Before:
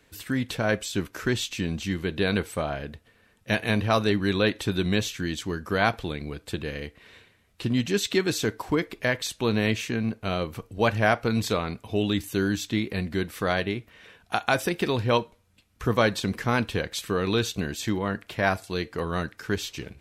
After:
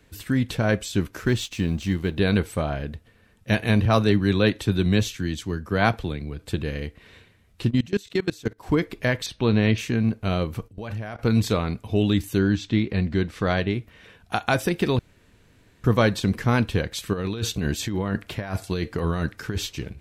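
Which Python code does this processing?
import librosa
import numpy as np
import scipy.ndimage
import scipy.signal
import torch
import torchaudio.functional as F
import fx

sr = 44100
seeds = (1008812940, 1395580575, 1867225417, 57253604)

y = fx.law_mismatch(x, sr, coded='A', at=(1.19, 2.17))
y = fx.band_widen(y, sr, depth_pct=40, at=(3.85, 6.39))
y = fx.level_steps(y, sr, step_db=23, at=(7.69, 8.65), fade=0.02)
y = fx.savgol(y, sr, points=15, at=(9.26, 9.78))
y = fx.level_steps(y, sr, step_db=18, at=(10.68, 11.19))
y = fx.lowpass(y, sr, hz=fx.line((12.38, 4200.0), (13.72, 7400.0)), slope=12, at=(12.38, 13.72), fade=0.02)
y = fx.over_compress(y, sr, threshold_db=-30.0, ratio=-1.0, at=(17.13, 19.67))
y = fx.edit(y, sr, fx.room_tone_fill(start_s=14.99, length_s=0.85), tone=tone)
y = fx.low_shelf(y, sr, hz=240.0, db=9.0)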